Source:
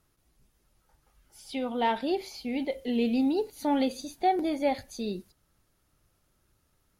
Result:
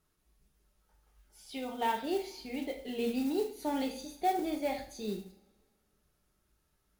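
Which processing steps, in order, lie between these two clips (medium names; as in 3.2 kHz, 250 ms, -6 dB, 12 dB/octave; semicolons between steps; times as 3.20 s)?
two-slope reverb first 0.45 s, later 2 s, from -25 dB, DRR 1.5 dB; modulation noise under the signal 21 dB; trim -7 dB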